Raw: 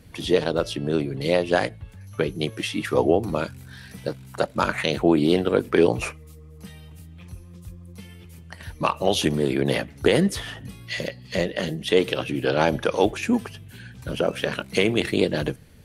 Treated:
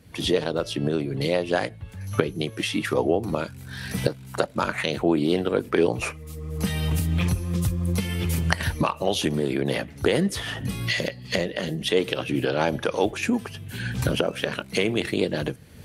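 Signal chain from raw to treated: recorder AGC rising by 29 dB/s; high-pass 56 Hz; trim -3 dB

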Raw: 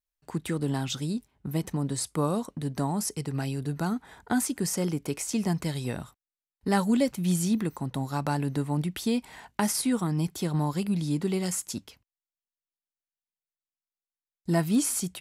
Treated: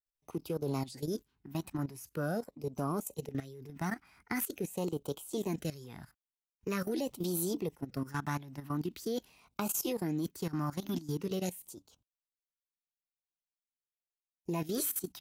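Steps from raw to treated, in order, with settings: formant shift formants +5 st; LFO notch sine 0.44 Hz 440–1900 Hz; level held to a coarse grid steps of 15 dB; trim -3 dB

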